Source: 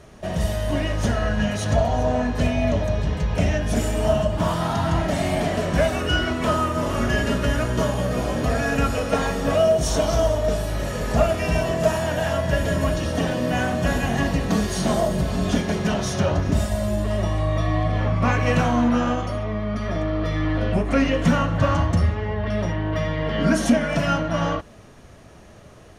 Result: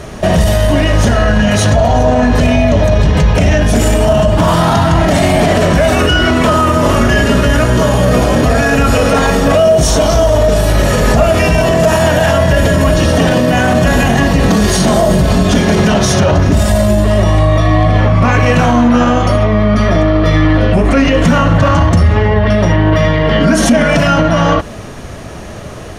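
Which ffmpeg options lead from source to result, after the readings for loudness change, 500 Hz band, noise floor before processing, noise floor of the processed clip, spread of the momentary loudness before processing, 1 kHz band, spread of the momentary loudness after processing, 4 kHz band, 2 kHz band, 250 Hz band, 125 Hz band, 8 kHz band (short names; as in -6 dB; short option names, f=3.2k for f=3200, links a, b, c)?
+12.0 dB, +11.5 dB, -46 dBFS, -27 dBFS, 5 LU, +12.0 dB, 2 LU, +12.5 dB, +12.0 dB, +11.5 dB, +12.0 dB, +13.0 dB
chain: -af "alimiter=level_in=20dB:limit=-1dB:release=50:level=0:latency=1,volume=-1dB"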